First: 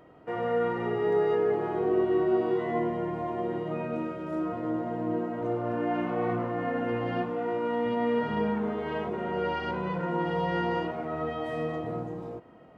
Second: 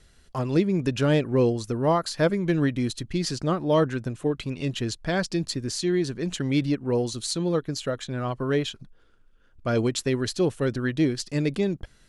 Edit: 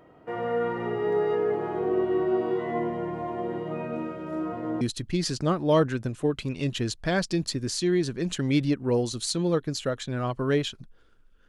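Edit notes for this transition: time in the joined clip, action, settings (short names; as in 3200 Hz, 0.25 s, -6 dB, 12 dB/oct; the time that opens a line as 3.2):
first
4.81 switch to second from 2.82 s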